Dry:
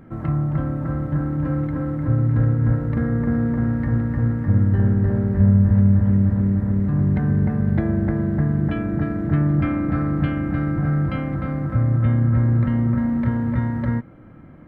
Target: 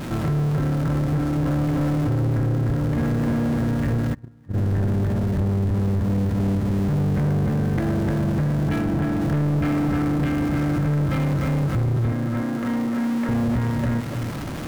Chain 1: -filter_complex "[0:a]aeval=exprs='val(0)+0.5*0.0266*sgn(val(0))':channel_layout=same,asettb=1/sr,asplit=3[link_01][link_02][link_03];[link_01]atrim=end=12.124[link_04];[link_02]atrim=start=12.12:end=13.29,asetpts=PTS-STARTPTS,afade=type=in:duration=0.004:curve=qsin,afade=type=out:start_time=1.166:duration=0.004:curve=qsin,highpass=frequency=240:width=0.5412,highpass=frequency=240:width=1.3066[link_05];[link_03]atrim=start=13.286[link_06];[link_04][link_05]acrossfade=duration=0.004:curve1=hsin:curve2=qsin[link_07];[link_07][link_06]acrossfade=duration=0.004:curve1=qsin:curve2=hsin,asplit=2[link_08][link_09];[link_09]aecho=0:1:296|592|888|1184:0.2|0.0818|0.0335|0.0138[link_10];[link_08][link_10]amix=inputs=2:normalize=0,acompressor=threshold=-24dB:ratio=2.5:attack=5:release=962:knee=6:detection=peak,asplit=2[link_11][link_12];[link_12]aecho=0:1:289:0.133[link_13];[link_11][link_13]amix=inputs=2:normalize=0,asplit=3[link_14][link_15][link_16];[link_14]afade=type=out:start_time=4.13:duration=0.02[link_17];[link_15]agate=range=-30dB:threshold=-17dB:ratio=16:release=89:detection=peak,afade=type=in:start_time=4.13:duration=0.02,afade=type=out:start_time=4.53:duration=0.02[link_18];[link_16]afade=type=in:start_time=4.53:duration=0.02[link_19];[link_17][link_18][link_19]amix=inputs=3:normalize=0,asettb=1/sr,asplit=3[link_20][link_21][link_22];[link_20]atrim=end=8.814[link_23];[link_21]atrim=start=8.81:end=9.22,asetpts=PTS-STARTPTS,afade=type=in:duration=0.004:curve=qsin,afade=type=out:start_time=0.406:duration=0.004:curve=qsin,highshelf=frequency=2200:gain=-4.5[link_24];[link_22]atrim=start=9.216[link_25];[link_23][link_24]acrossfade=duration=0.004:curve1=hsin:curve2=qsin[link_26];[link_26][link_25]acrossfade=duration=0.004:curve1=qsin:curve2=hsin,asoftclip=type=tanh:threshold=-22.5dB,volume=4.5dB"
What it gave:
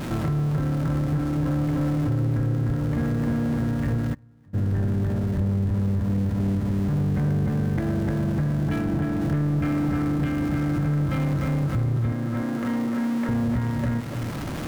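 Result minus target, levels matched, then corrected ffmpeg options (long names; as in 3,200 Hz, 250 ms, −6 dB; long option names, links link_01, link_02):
downward compressor: peak gain reduction +5 dB
-filter_complex "[0:a]aeval=exprs='val(0)+0.5*0.0266*sgn(val(0))':channel_layout=same,asettb=1/sr,asplit=3[link_01][link_02][link_03];[link_01]atrim=end=12.124[link_04];[link_02]atrim=start=12.12:end=13.29,asetpts=PTS-STARTPTS,afade=type=in:duration=0.004:curve=qsin,afade=type=out:start_time=1.166:duration=0.004:curve=qsin,highpass=frequency=240:width=0.5412,highpass=frequency=240:width=1.3066[link_05];[link_03]atrim=start=13.286[link_06];[link_04][link_05]acrossfade=duration=0.004:curve1=hsin:curve2=qsin[link_07];[link_07][link_06]acrossfade=duration=0.004:curve1=qsin:curve2=hsin,asplit=2[link_08][link_09];[link_09]aecho=0:1:296|592|888|1184:0.2|0.0818|0.0335|0.0138[link_10];[link_08][link_10]amix=inputs=2:normalize=0,acompressor=threshold=-16dB:ratio=2.5:attack=5:release=962:knee=6:detection=peak,asplit=2[link_11][link_12];[link_12]aecho=0:1:289:0.133[link_13];[link_11][link_13]amix=inputs=2:normalize=0,asplit=3[link_14][link_15][link_16];[link_14]afade=type=out:start_time=4.13:duration=0.02[link_17];[link_15]agate=range=-30dB:threshold=-17dB:ratio=16:release=89:detection=peak,afade=type=in:start_time=4.13:duration=0.02,afade=type=out:start_time=4.53:duration=0.02[link_18];[link_16]afade=type=in:start_time=4.53:duration=0.02[link_19];[link_17][link_18][link_19]amix=inputs=3:normalize=0,asettb=1/sr,asplit=3[link_20][link_21][link_22];[link_20]atrim=end=8.814[link_23];[link_21]atrim=start=8.81:end=9.22,asetpts=PTS-STARTPTS,afade=type=in:duration=0.004:curve=qsin,afade=type=out:start_time=0.406:duration=0.004:curve=qsin,highshelf=frequency=2200:gain=-4.5[link_24];[link_22]atrim=start=9.216[link_25];[link_23][link_24]acrossfade=duration=0.004:curve1=hsin:curve2=qsin[link_26];[link_26][link_25]acrossfade=duration=0.004:curve1=qsin:curve2=hsin,asoftclip=type=tanh:threshold=-22.5dB,volume=4.5dB"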